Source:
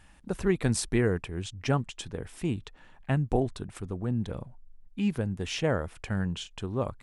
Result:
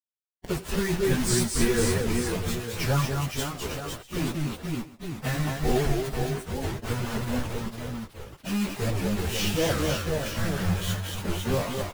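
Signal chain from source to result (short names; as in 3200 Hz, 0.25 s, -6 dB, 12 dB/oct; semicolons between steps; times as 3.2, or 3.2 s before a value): in parallel at -6.5 dB: soft clip -29.5 dBFS, distortion -7 dB; on the sum: high shelf 2800 Hz +3 dB; doubler 13 ms -8 dB; on a send at -10 dB: reverb RT60 2.5 s, pre-delay 40 ms; on the sum: reverb removal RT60 1 s; bit-crush 5-bit; tapped delay 46/130/298/376/519 ms -15.5/-4/-5/-20/-9.5 dB; plain phase-vocoder stretch 1.7×; low shelf 78 Hz +10 dB; record warp 78 rpm, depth 160 cents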